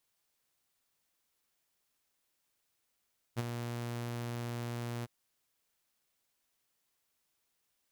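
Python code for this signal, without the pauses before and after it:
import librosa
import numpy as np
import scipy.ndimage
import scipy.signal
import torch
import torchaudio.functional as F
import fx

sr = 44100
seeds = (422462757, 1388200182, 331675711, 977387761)

y = fx.adsr_tone(sr, wave='saw', hz=119.0, attack_ms=30.0, decay_ms=29.0, sustain_db=-7.0, held_s=1.68, release_ms=27.0, level_db=-27.0)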